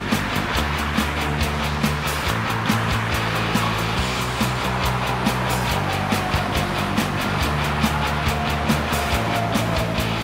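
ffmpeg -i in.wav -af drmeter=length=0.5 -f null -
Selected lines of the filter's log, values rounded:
Channel 1: DR: 12.2
Overall DR: 12.2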